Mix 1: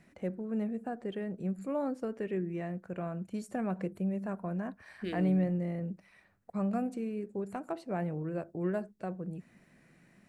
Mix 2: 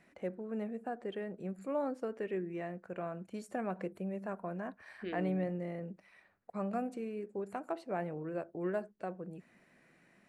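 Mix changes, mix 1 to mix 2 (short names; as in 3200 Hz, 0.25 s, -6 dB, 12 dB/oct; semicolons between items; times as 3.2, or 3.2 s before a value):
second voice: add air absorption 220 m; master: add tone controls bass -10 dB, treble -4 dB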